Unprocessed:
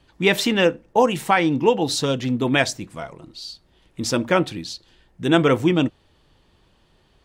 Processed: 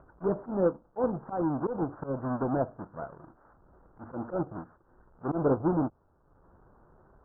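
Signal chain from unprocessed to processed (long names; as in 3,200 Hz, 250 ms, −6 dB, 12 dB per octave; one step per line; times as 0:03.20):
each half-wave held at its own peak
Butterworth low-pass 1,500 Hz 72 dB per octave
low-shelf EQ 410 Hz −7.5 dB
treble cut that deepens with the level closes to 760 Hz, closed at −17.5 dBFS
volume swells 104 ms
upward compression, threshold −43 dBFS
level −7 dB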